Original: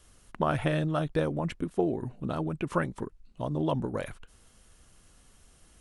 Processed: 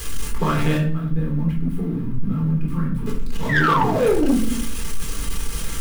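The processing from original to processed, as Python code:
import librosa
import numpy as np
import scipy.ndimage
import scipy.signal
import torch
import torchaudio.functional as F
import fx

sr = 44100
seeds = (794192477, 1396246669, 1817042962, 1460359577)

y = x + 0.5 * 10.0 ** (-30.0 / 20.0) * np.sign(x)
y = fx.curve_eq(y, sr, hz=(240.0, 380.0, 1400.0, 7300.0, 11000.0), db=(0, -16, -12, -26, -17), at=(0.77, 3.06))
y = fx.spec_paint(y, sr, seeds[0], shape='fall', start_s=3.49, length_s=0.86, low_hz=210.0, high_hz=2000.0, level_db=-22.0)
y = fx.peak_eq(y, sr, hz=710.0, db=-13.0, octaves=0.38)
y = y + 0.48 * np.pad(y, (int(4.4 * sr / 1000.0), 0))[:len(y)]
y = fx.room_shoebox(y, sr, seeds[1], volume_m3=710.0, walls='furnished', distance_m=3.9)
y = 10.0 ** (-11.5 / 20.0) * np.tanh(y / 10.0 ** (-11.5 / 20.0))
y = y * 10.0 ** (1.0 / 20.0)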